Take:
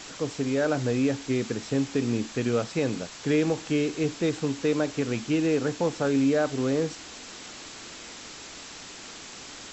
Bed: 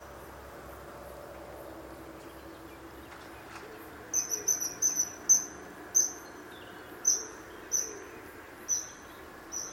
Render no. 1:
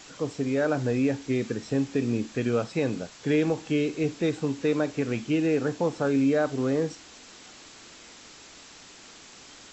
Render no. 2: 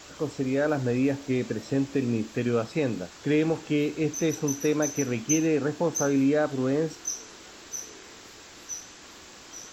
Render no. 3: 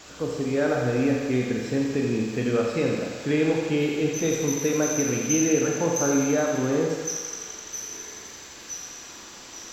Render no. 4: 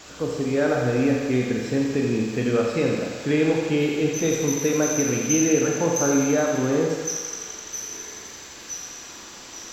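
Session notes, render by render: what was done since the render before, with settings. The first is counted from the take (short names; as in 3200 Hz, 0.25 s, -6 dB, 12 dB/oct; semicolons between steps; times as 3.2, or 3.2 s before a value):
noise print and reduce 6 dB
add bed -6 dB
thinning echo 85 ms, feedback 83%, high-pass 490 Hz, level -7.5 dB; Schroeder reverb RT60 1 s, combs from 32 ms, DRR 2 dB
gain +2 dB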